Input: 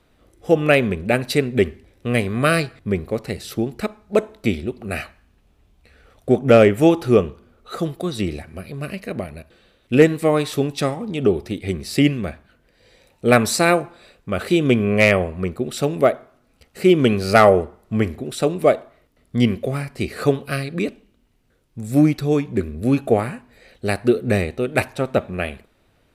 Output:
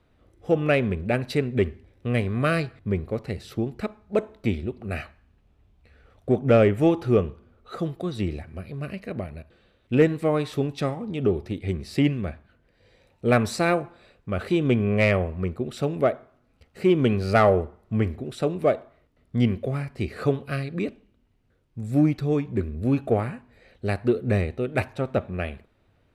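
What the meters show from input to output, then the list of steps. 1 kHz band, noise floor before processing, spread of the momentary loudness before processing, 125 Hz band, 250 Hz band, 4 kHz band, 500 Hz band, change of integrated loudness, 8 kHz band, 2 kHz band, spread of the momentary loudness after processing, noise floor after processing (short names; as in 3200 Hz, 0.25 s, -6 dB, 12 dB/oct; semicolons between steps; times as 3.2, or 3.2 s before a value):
-6.5 dB, -61 dBFS, 14 LU, -2.0 dB, -5.0 dB, -9.0 dB, -6.0 dB, -5.5 dB, -13.5 dB, -7.5 dB, 14 LU, -65 dBFS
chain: high shelf 5400 Hz -12 dB; in parallel at -11.5 dB: soft clip -15.5 dBFS, distortion -8 dB; on the sum: bell 91 Hz +5.5 dB 1.2 oct; gain -7 dB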